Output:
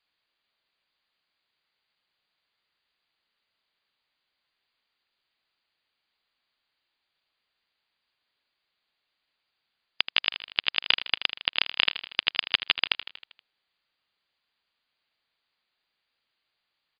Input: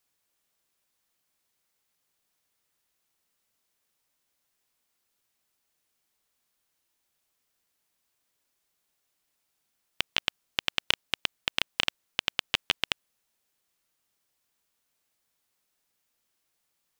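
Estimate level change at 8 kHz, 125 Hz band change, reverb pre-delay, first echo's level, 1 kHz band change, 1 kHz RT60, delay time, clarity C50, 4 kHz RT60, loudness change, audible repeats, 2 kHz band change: under -30 dB, n/a, none, -12.0 dB, +1.0 dB, none, 79 ms, none, none, +4.0 dB, 5, +4.0 dB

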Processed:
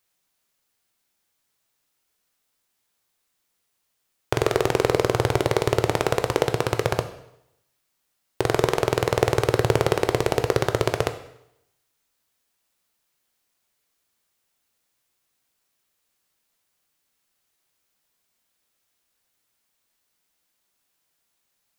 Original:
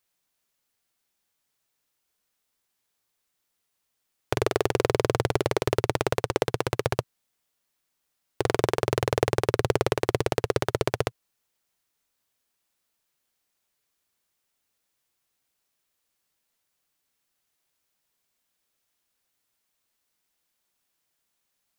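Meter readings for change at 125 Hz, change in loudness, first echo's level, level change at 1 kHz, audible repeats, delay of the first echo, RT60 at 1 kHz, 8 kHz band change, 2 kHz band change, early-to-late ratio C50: +3.5 dB, +3.5 dB, none, +3.5 dB, none, none, 0.80 s, +3.5 dB, +3.5 dB, 12.0 dB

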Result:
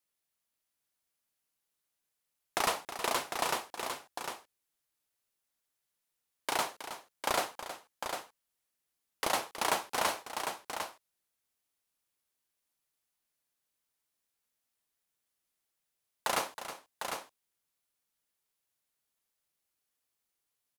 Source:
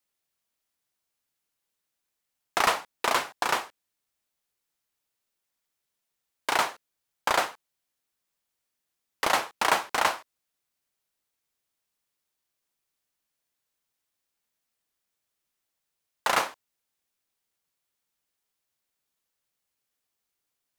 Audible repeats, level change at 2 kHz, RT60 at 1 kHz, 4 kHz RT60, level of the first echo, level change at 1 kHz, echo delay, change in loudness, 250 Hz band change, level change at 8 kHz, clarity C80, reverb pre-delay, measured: 2, -8.0 dB, none, none, -11.5 dB, -6.5 dB, 0.319 s, -8.0 dB, -3.0 dB, -2.0 dB, none, none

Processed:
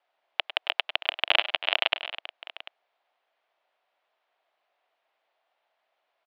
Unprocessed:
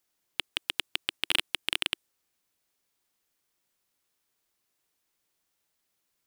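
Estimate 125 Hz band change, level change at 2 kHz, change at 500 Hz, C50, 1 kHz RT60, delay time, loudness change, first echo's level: under -20 dB, +6.5 dB, +12.0 dB, none, none, 0.1 s, +4.5 dB, -14.5 dB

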